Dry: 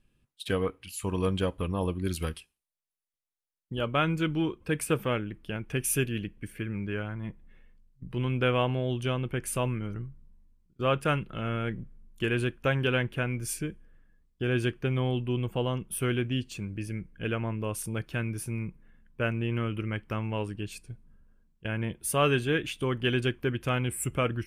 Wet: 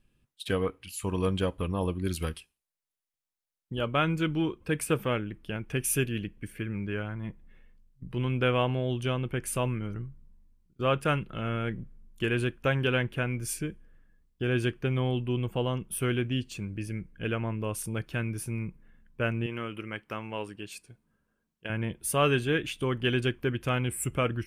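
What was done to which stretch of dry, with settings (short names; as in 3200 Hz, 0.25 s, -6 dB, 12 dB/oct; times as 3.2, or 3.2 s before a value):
19.46–21.7 HPF 390 Hz 6 dB/oct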